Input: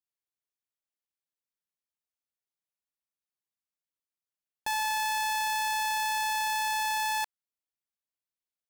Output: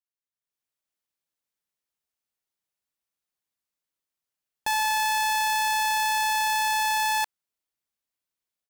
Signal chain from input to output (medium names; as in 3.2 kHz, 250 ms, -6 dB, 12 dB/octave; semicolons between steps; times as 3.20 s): level rider gain up to 13 dB; trim -8 dB